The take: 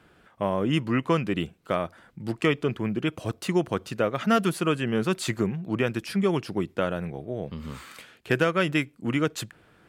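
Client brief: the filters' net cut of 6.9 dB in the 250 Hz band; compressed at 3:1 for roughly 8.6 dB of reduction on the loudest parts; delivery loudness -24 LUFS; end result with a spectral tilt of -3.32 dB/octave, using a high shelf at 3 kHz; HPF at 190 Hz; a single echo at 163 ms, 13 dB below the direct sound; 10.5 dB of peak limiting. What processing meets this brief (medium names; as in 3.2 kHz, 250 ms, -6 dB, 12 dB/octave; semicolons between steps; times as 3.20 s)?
high-pass 190 Hz; peaking EQ 250 Hz -8 dB; treble shelf 3 kHz +9 dB; compression 3:1, threshold -30 dBFS; peak limiter -23.5 dBFS; delay 163 ms -13 dB; trim +13 dB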